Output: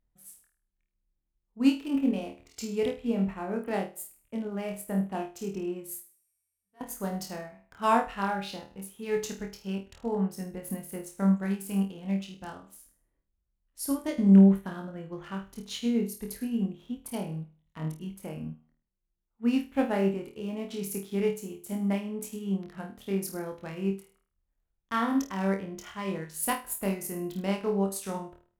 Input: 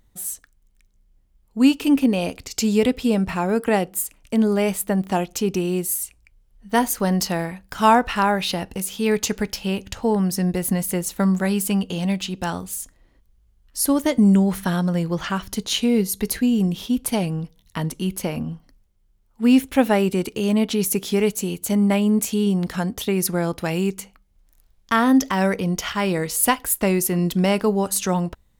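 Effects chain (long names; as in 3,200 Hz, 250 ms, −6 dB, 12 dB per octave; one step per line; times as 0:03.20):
adaptive Wiener filter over 9 samples
0:06.00–0:06.81: tuned comb filter 87 Hz, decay 2 s, mix 100%
on a send: flutter between parallel walls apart 4.4 metres, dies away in 0.42 s
on the sum: expander for the loud parts 1.5 to 1, over −31 dBFS
level −7.5 dB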